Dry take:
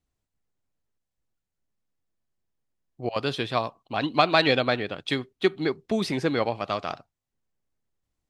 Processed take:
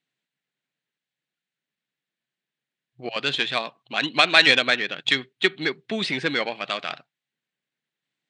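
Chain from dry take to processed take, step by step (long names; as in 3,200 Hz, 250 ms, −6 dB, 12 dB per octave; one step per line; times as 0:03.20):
flat-topped bell 2,500 Hz +12 dB
harmonic generator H 8 −28 dB, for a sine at 2 dBFS
brick-wall band-pass 120–9,400 Hz
level −2.5 dB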